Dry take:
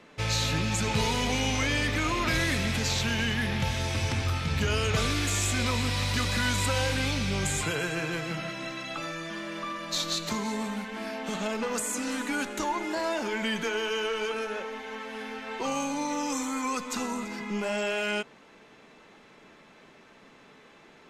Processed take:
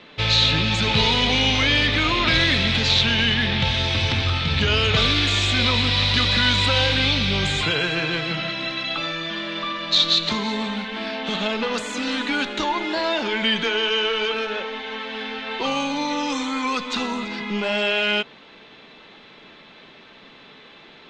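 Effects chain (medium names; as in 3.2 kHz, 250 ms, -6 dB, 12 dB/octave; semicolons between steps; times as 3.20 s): resonant low-pass 3.7 kHz, resonance Q 3.3; trim +5.5 dB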